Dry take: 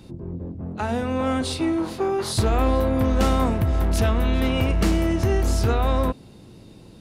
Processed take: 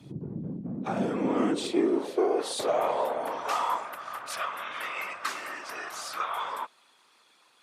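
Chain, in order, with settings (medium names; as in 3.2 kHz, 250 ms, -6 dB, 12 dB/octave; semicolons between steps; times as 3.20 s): whisper effect; high-pass sweep 150 Hz -> 1.3 kHz, 0.10–3.72 s; speed mistake 48 kHz file played as 44.1 kHz; trim -6 dB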